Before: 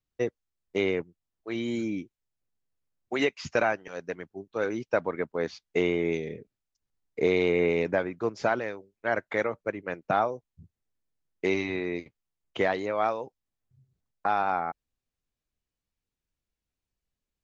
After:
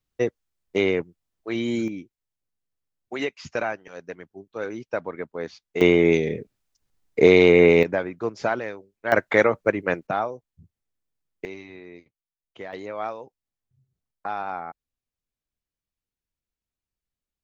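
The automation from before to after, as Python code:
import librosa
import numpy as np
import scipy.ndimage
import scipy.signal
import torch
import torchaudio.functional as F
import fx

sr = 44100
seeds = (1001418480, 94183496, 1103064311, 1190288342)

y = fx.gain(x, sr, db=fx.steps((0.0, 5.0), (1.88, -2.0), (5.81, 10.0), (7.83, 1.5), (9.12, 10.0), (10.07, -0.5), (11.45, -12.0), (12.73, -4.0)))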